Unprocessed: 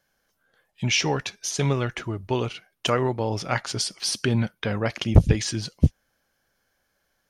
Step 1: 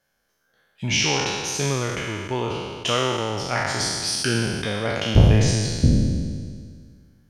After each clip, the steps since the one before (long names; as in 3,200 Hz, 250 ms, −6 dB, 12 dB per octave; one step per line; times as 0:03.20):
peak hold with a decay on every bin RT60 1.89 s
level −3 dB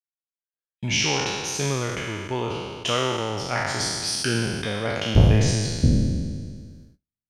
noise gate −44 dBFS, range −41 dB
level −1.5 dB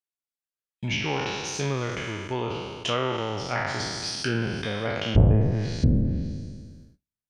treble cut that deepens with the level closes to 890 Hz, closed at −15 dBFS
level −2 dB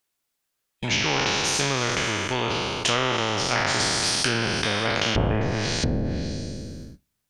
every bin compressed towards the loudest bin 2 to 1
level +3.5 dB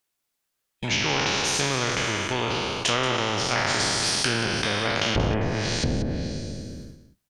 single-tap delay 182 ms −11.5 dB
level −1 dB